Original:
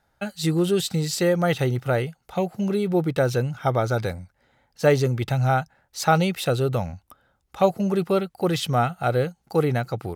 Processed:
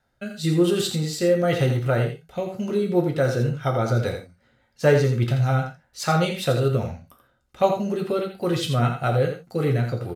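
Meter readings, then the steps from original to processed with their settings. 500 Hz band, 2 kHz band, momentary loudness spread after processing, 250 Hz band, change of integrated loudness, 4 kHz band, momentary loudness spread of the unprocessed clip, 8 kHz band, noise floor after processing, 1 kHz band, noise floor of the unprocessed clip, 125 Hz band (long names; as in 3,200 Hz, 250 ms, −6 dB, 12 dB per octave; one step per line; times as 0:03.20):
+0.5 dB, −0.5 dB, 9 LU, 0.0 dB, +0.5 dB, 0.0 dB, 6 LU, −1.5 dB, −67 dBFS, −2.5 dB, −70 dBFS, +2.0 dB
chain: high-shelf EQ 11,000 Hz −3.5 dB
notch filter 820 Hz, Q 13
rotating-speaker cabinet horn 1 Hz, later 5 Hz, at 0:02.39
on a send: single-tap delay 84 ms −8 dB
on the sum: reverb whose tail is shaped and stops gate 100 ms falling, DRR 2.5 dB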